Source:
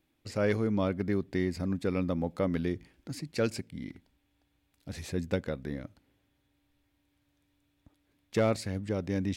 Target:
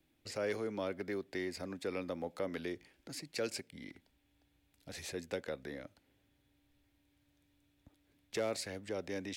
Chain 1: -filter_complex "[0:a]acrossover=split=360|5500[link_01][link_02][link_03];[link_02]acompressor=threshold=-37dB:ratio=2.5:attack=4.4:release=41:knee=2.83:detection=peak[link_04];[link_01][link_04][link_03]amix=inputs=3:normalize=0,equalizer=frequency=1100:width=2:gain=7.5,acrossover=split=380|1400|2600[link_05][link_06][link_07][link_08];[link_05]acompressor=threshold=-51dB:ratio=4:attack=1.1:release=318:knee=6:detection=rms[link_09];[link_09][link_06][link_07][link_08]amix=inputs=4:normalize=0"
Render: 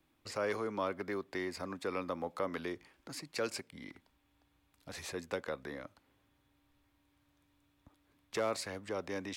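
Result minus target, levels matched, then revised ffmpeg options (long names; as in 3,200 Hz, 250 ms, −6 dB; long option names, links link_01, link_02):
1,000 Hz band +5.5 dB
-filter_complex "[0:a]acrossover=split=360|5500[link_01][link_02][link_03];[link_02]acompressor=threshold=-37dB:ratio=2.5:attack=4.4:release=41:knee=2.83:detection=peak[link_04];[link_01][link_04][link_03]amix=inputs=3:normalize=0,equalizer=frequency=1100:width=2:gain=-4,acrossover=split=380|1400|2600[link_05][link_06][link_07][link_08];[link_05]acompressor=threshold=-51dB:ratio=4:attack=1.1:release=318:knee=6:detection=rms[link_09];[link_09][link_06][link_07][link_08]amix=inputs=4:normalize=0"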